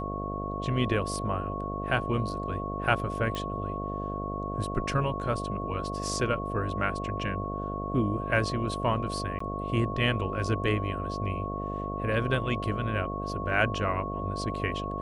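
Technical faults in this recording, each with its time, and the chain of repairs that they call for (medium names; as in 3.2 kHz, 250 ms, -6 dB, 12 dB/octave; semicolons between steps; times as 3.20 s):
buzz 50 Hz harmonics 14 -35 dBFS
whine 1.1 kHz -35 dBFS
3.35 s: pop -19 dBFS
9.39–9.40 s: dropout 14 ms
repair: de-click; de-hum 50 Hz, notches 14; band-stop 1.1 kHz, Q 30; interpolate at 9.39 s, 14 ms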